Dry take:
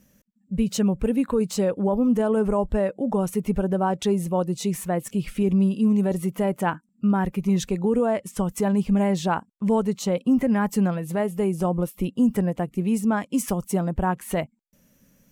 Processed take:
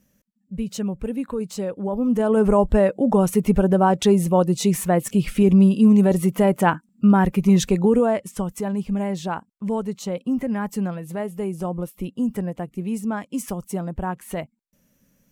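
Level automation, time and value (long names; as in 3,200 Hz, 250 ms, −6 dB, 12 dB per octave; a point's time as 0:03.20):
0:01.80 −4.5 dB
0:02.51 +6 dB
0:07.80 +6 dB
0:08.63 −3.5 dB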